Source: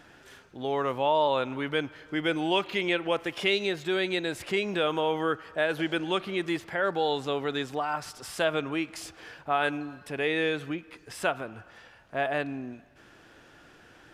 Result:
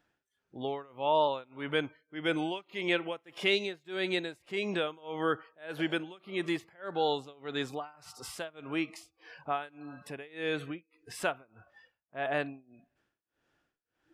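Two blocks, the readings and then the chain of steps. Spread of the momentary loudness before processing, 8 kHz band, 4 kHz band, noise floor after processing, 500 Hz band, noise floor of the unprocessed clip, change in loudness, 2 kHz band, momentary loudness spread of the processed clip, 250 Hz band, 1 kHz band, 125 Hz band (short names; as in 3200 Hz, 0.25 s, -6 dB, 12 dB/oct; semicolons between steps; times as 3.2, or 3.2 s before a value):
11 LU, -5.0 dB, -4.5 dB, -85 dBFS, -5.5 dB, -55 dBFS, -5.0 dB, -5.5 dB, 15 LU, -4.5 dB, -5.5 dB, -5.0 dB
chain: spectral noise reduction 19 dB; tremolo 1.7 Hz, depth 96%; gain -1.5 dB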